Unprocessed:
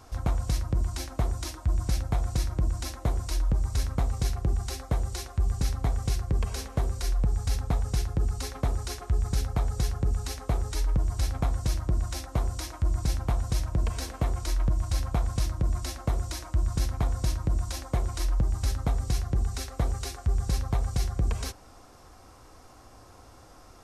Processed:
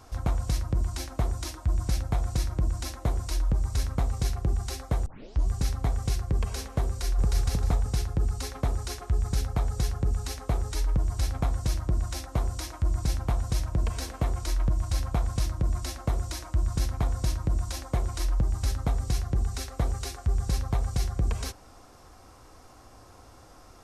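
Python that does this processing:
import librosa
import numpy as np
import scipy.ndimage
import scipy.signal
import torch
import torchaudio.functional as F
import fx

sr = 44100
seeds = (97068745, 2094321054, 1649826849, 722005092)

y = fx.echo_throw(x, sr, start_s=6.87, length_s=0.57, ms=310, feedback_pct=25, wet_db=-1.0)
y = fx.edit(y, sr, fx.tape_start(start_s=5.06, length_s=0.42), tone=tone)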